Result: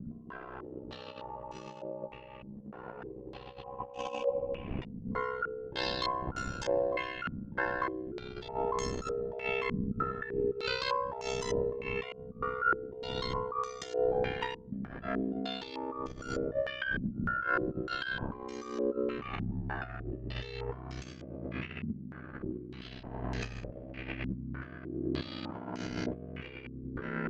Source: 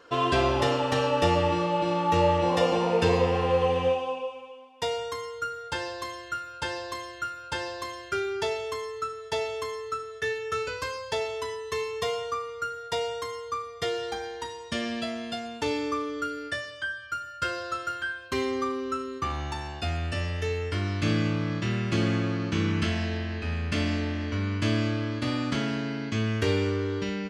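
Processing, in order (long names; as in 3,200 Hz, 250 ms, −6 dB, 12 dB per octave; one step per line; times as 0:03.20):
wind on the microphone 230 Hz −38 dBFS
brickwall limiter −17 dBFS, peak gain reduction 6.5 dB
ring modulation 32 Hz
compressor whose output falls as the input rises −36 dBFS, ratio −0.5
low-pass on a step sequencer 3.3 Hz 220–6,500 Hz
level −2.5 dB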